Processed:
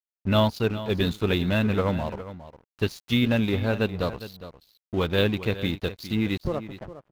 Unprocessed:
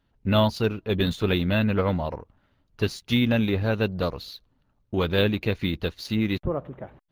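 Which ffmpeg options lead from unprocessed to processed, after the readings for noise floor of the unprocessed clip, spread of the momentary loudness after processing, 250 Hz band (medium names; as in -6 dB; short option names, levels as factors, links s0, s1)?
-69 dBFS, 16 LU, -0.5 dB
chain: -af "aeval=exprs='sgn(val(0))*max(abs(val(0))-0.00794,0)':c=same,aecho=1:1:409:0.2"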